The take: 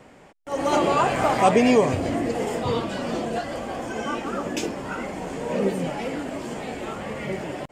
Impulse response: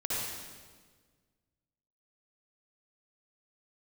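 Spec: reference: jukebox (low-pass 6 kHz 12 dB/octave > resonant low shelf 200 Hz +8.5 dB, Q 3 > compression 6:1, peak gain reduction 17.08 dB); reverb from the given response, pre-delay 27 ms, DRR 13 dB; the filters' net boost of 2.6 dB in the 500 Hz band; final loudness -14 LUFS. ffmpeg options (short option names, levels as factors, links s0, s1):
-filter_complex "[0:a]equalizer=f=500:t=o:g=5,asplit=2[s0][s1];[1:a]atrim=start_sample=2205,adelay=27[s2];[s1][s2]afir=irnorm=-1:irlink=0,volume=0.106[s3];[s0][s3]amix=inputs=2:normalize=0,lowpass=6000,lowshelf=f=200:t=q:w=3:g=8.5,acompressor=threshold=0.0398:ratio=6,volume=7.5"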